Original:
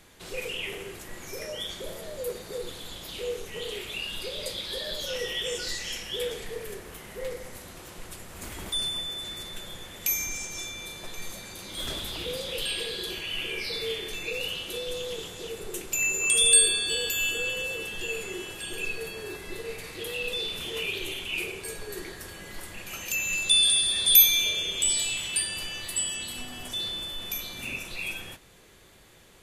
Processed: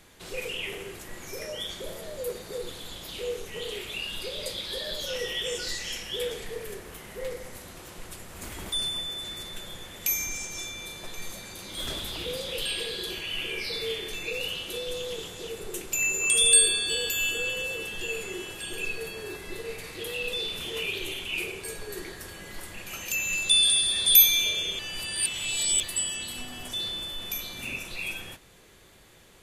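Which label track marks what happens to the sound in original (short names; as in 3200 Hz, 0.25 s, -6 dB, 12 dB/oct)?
24.790000	25.830000	reverse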